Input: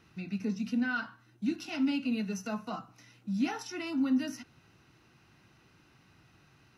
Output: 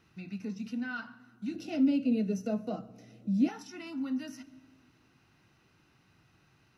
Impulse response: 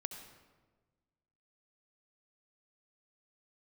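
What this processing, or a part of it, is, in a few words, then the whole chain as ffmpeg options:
ducked reverb: -filter_complex "[0:a]asettb=1/sr,asplit=3[link_01][link_02][link_03];[link_01]atrim=end=1.544[link_04];[link_02]atrim=start=1.54:end=3.49,asetpts=PTS-STARTPTS,afade=type=in:duration=0.004:curve=qsin,afade=type=out:start_time=1.946:duration=0.004:curve=qsin,lowshelf=frequency=740:width_type=q:width=3:gain=9[link_05];[link_03]atrim=start=3.486[link_06];[link_04][link_05]acrossfade=duration=0.004:curve1=hsin:curve2=qsin[link_07];[link_07][link_06]acrossfade=duration=0.004:curve1=qsin:curve2=hsin,asplit=3[link_08][link_09][link_10];[1:a]atrim=start_sample=2205[link_11];[link_09][link_11]afir=irnorm=-1:irlink=0[link_12];[link_10]apad=whole_len=298899[link_13];[link_12][link_13]sidechaincompress=threshold=-31dB:ratio=8:attack=16:release=913,volume=-3dB[link_14];[link_08][link_14]amix=inputs=2:normalize=0,volume=-7.5dB"

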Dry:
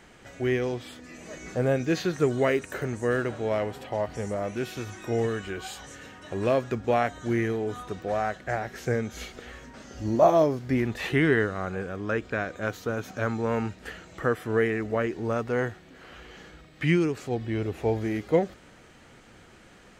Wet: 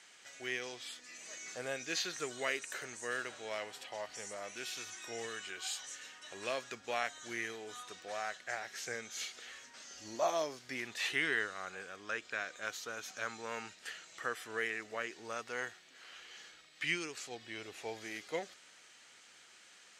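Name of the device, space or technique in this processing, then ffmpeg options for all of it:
piezo pickup straight into a mixer: -af "lowpass=6700,aderivative,volume=6.5dB"

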